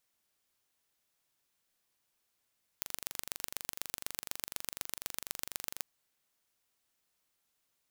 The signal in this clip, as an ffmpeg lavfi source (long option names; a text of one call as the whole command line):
ffmpeg -f lavfi -i "aevalsrc='0.447*eq(mod(n,1830),0)*(0.5+0.5*eq(mod(n,5490),0))':duration=3:sample_rate=44100" out.wav